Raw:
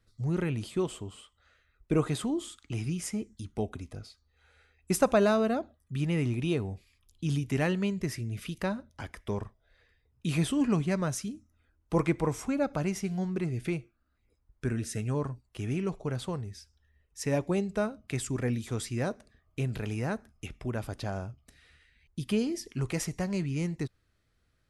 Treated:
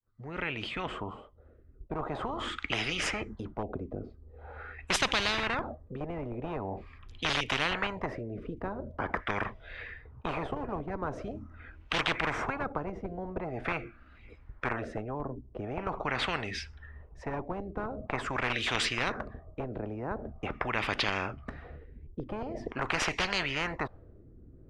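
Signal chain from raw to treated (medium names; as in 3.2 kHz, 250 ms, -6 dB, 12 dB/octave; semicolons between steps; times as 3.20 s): fade-in on the opening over 2.80 s; in parallel at -4.5 dB: Schmitt trigger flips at -24 dBFS; on the sum: LFO low-pass sine 0.44 Hz 320–2700 Hz; spectrum-flattening compressor 10:1; trim -2 dB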